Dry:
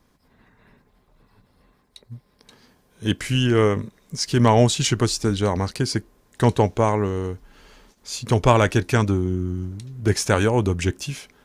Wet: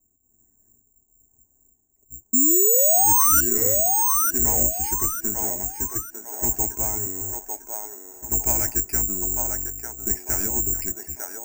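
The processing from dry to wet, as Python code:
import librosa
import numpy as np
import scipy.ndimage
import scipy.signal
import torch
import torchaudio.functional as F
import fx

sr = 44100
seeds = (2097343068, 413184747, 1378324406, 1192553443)

p1 = fx.octave_divider(x, sr, octaves=1, level_db=2.0)
p2 = fx.env_lowpass(p1, sr, base_hz=550.0, full_db=-12.0)
p3 = scipy.signal.sosfilt(scipy.signal.butter(4, 2800.0, 'lowpass', fs=sr, output='sos'), p2)
p4 = fx.fixed_phaser(p3, sr, hz=760.0, stages=8)
p5 = 10.0 ** (-19.0 / 20.0) * np.tanh(p4 / 10.0 ** (-19.0 / 20.0))
p6 = p4 + F.gain(torch.from_numpy(p5), -9.0).numpy()
p7 = fx.spec_paint(p6, sr, seeds[0], shape='rise', start_s=2.33, length_s=1.08, low_hz=240.0, high_hz=1500.0, level_db=-11.0)
p8 = fx.echo_wet_bandpass(p7, sr, ms=899, feedback_pct=38, hz=890.0, wet_db=-3)
p9 = (np.kron(scipy.signal.resample_poly(p8, 1, 6), np.eye(6)[0]) * 6)[:len(p8)]
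y = F.gain(torch.from_numpy(p9), -13.5).numpy()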